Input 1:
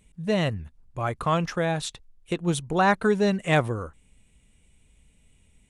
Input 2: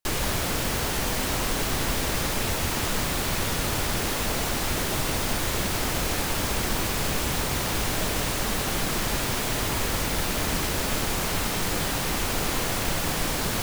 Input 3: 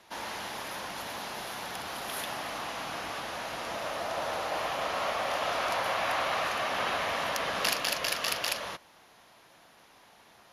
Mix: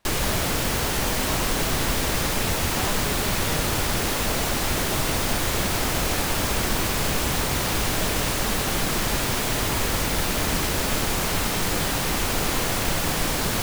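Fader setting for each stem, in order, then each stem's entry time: −14.0, +2.5, −10.5 decibels; 0.00, 0.00, 0.00 seconds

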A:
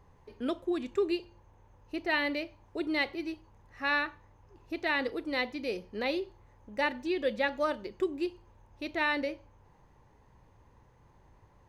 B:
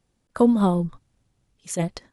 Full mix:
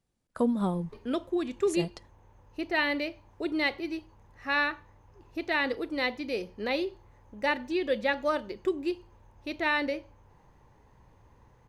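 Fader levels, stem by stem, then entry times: +2.0, −9.0 decibels; 0.65, 0.00 seconds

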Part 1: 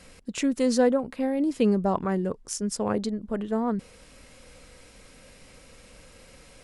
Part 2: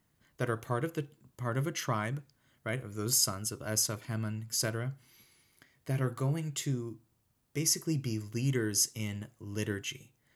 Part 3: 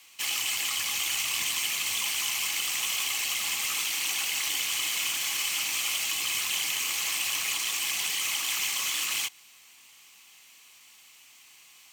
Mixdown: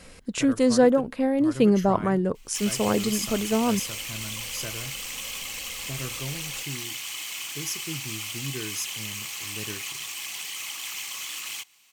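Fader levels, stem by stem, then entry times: +3.0, −4.5, −5.5 decibels; 0.00, 0.00, 2.35 seconds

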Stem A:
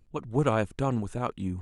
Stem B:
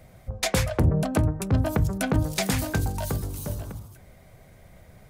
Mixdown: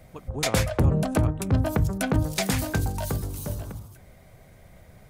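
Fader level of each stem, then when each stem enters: −8.0, 0.0 decibels; 0.00, 0.00 seconds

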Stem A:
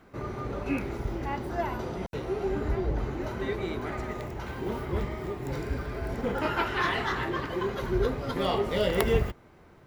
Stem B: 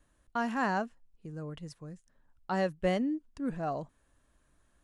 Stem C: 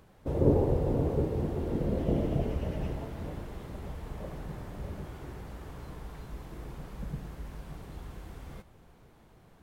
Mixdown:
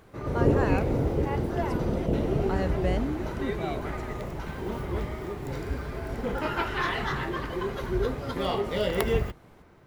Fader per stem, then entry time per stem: −1.0, −1.5, +1.5 decibels; 0.00, 0.00, 0.00 seconds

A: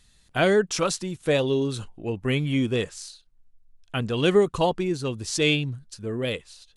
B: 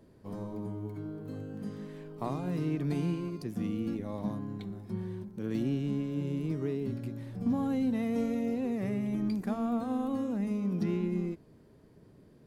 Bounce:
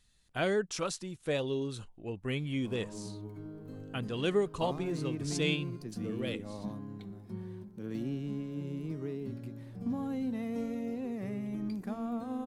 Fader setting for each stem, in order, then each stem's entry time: −10.0, −5.0 decibels; 0.00, 2.40 seconds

